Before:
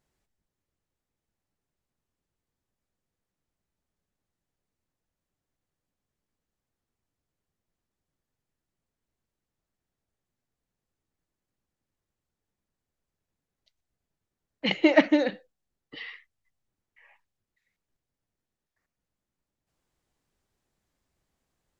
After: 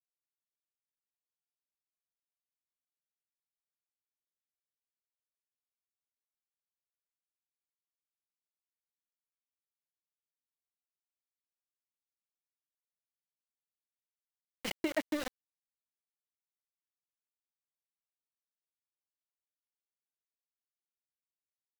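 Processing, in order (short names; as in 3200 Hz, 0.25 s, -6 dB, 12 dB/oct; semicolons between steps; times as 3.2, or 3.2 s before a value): sample gate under -22 dBFS; compressor, threshold -20 dBFS, peak gain reduction 8 dB; gain -9 dB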